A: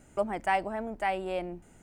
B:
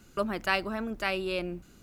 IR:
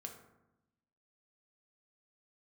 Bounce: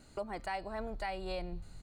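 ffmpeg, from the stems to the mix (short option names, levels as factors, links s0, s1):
-filter_complex "[0:a]volume=0.708,asplit=2[s0][s1];[1:a]lowpass=f=4300:t=q:w=11,equalizer=f=1100:t=o:w=0.6:g=11,bandreject=f=132.5:t=h:w=4,bandreject=f=265:t=h:w=4,bandreject=f=397.5:t=h:w=4,bandreject=f=530:t=h:w=4,bandreject=f=662.5:t=h:w=4,bandreject=f=795:t=h:w=4,bandreject=f=927.5:t=h:w=4,bandreject=f=1060:t=h:w=4,bandreject=f=1192.5:t=h:w=4,bandreject=f=1325:t=h:w=4,bandreject=f=1457.5:t=h:w=4,bandreject=f=1590:t=h:w=4,bandreject=f=1722.5:t=h:w=4,bandreject=f=1855:t=h:w=4,bandreject=f=1987.5:t=h:w=4,bandreject=f=2120:t=h:w=4,bandreject=f=2252.5:t=h:w=4,bandreject=f=2385:t=h:w=4,bandreject=f=2517.5:t=h:w=4,bandreject=f=2650:t=h:w=4,bandreject=f=2782.5:t=h:w=4,bandreject=f=2915:t=h:w=4,bandreject=f=3047.5:t=h:w=4,bandreject=f=3180:t=h:w=4,bandreject=f=3312.5:t=h:w=4,bandreject=f=3445:t=h:w=4,bandreject=f=3577.5:t=h:w=4,bandreject=f=3710:t=h:w=4,bandreject=f=3842.5:t=h:w=4,bandreject=f=3975:t=h:w=4,bandreject=f=4107.5:t=h:w=4,bandreject=f=4240:t=h:w=4,bandreject=f=4372.5:t=h:w=4,bandreject=f=4505:t=h:w=4,bandreject=f=4637.5:t=h:w=4,bandreject=f=4770:t=h:w=4,bandreject=f=4902.5:t=h:w=4,bandreject=f=5035:t=h:w=4,adelay=1.5,volume=0.2[s2];[s1]apad=whole_len=80723[s3];[s2][s3]sidechaincompress=threshold=0.0112:ratio=5:attack=33:release=390[s4];[s0][s4]amix=inputs=2:normalize=0,asubboost=boost=10.5:cutoff=120,alimiter=level_in=1.58:limit=0.0631:level=0:latency=1:release=268,volume=0.631"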